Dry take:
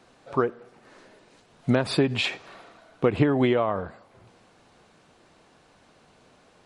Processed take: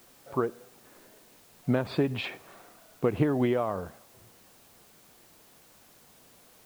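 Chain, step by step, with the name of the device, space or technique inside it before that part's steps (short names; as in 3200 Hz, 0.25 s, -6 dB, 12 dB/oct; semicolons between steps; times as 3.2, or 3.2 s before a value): cassette deck with a dirty head (tape spacing loss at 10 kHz 20 dB; wow and flutter; white noise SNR 26 dB); gain -3.5 dB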